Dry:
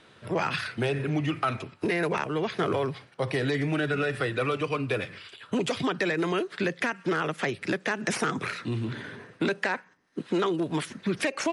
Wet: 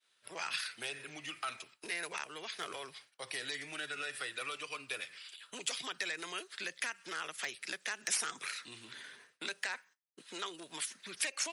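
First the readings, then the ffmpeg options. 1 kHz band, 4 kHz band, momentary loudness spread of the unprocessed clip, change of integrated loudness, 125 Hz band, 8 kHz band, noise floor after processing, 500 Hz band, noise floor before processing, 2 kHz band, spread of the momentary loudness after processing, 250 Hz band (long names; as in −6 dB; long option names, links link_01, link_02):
−13.0 dB, −3.0 dB, 5 LU, −11.0 dB, −30.5 dB, +3.0 dB, −74 dBFS, −20.5 dB, −57 dBFS, −8.5 dB, 11 LU, −25.0 dB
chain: -af "asoftclip=type=hard:threshold=-15.5dB,aderivative,agate=range=-33dB:threshold=-58dB:ratio=3:detection=peak,volume=3dB"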